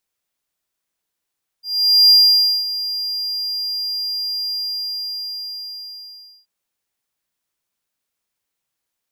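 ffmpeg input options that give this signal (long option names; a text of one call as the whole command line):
ffmpeg -f lavfi -i "aevalsrc='0.596*(1-4*abs(mod(4800*t+0.25,1)-0.5))':duration=4.83:sample_rate=44100,afade=type=in:duration=0.467,afade=type=out:start_time=0.467:duration=0.545:silence=0.188,afade=type=out:start_time=2.89:duration=1.94" out.wav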